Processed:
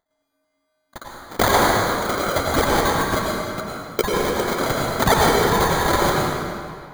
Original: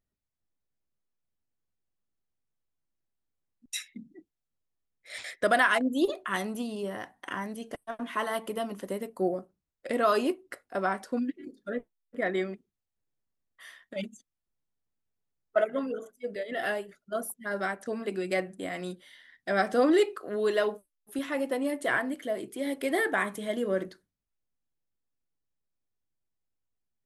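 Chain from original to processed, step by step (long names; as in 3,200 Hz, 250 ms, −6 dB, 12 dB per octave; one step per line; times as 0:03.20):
band-splitting scrambler in four parts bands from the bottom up 3412
high-pass filter 920 Hz
change of speed 3.9×
sample-rate reduction 2,700 Hz, jitter 0%
convolution reverb RT60 2.3 s, pre-delay 85 ms, DRR −3.5 dB
level +6.5 dB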